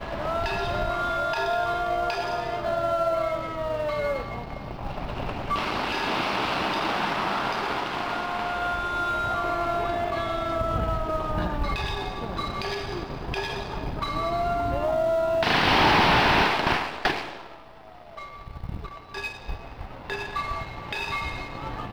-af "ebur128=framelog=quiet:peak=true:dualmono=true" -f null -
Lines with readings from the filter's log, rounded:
Integrated loudness:
  I:         -23.2 LUFS
  Threshold: -33.7 LUFS
Loudness range:
  LRA:        11.0 LU
  Threshold: -43.5 LUFS
  LRA low:   -29.9 LUFS
  LRA high:  -18.9 LUFS
True peak:
  Peak:      -11.9 dBFS